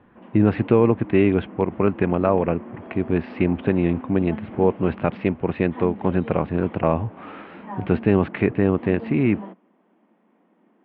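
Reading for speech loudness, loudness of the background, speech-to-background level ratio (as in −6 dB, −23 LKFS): −22.0 LKFS, −38.0 LKFS, 16.0 dB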